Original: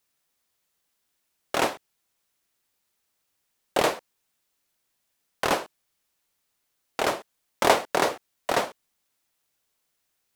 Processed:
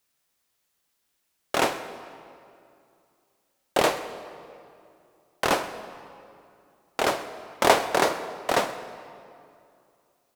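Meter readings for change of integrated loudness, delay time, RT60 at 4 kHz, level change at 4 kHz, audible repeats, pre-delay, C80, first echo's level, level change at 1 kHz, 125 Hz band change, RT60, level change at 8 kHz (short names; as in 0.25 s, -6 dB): +0.5 dB, 0.13 s, 1.7 s, +1.5 dB, 1, 22 ms, 11.5 dB, -19.5 dB, +1.5 dB, +1.5 dB, 2.5 s, +1.0 dB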